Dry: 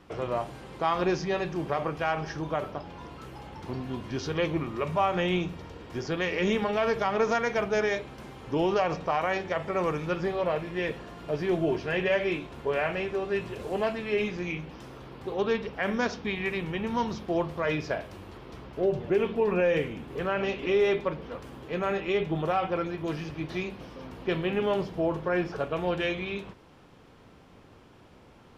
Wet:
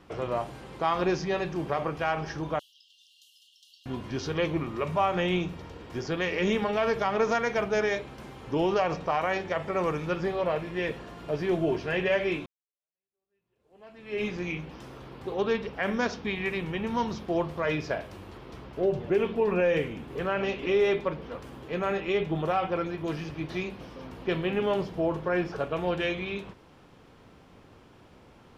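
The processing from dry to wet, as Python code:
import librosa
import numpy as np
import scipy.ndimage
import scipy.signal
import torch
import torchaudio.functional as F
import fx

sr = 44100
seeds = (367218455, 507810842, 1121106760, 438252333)

y = fx.cheby1_highpass(x, sr, hz=2800.0, order=10, at=(2.59, 3.86))
y = fx.edit(y, sr, fx.fade_in_span(start_s=12.46, length_s=1.79, curve='exp'), tone=tone)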